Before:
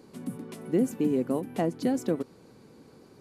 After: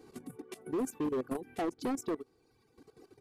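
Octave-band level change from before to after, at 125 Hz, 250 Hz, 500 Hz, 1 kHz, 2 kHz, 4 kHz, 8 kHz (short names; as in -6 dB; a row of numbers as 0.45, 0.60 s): -13.5, -8.5, -7.0, -2.5, -3.5, -4.5, -2.0 dB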